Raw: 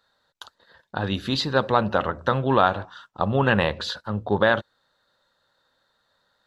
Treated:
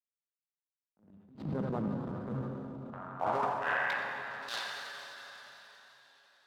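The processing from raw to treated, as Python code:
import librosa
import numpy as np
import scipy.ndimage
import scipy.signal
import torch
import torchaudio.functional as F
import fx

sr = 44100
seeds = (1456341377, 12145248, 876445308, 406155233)

y = fx.delta_hold(x, sr, step_db=-19.0)
y = scipy.signal.sosfilt(scipy.signal.butter(2, 95.0, 'highpass', fs=sr, output='sos'), y)
y = fx.echo_banded(y, sr, ms=86, feedback_pct=80, hz=1400.0, wet_db=-6)
y = fx.rider(y, sr, range_db=10, speed_s=2.0)
y = fx.filter_sweep_bandpass(y, sr, from_hz=200.0, to_hz=4300.0, start_s=2.36, end_s=4.39, q=2.8)
y = fx.step_gate(y, sr, bpm=87, pattern='xx.xx...x', floor_db=-24.0, edge_ms=4.5)
y = fx.rev_plate(y, sr, seeds[0], rt60_s=4.1, hf_ratio=1.0, predelay_ms=0, drr_db=3.0)
y = fx.transient(y, sr, attack_db=-11, sustain_db=5)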